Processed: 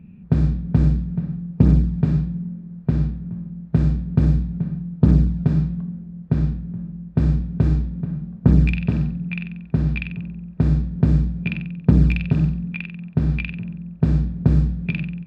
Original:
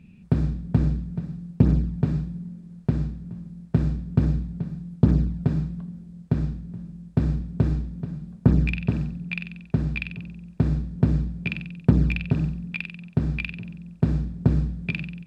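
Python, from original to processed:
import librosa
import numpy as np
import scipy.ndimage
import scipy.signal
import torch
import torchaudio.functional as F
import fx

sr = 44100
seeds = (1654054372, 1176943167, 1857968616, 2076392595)

y = fx.env_lowpass(x, sr, base_hz=1500.0, full_db=-15.0)
y = fx.hpss(y, sr, part='harmonic', gain_db=7)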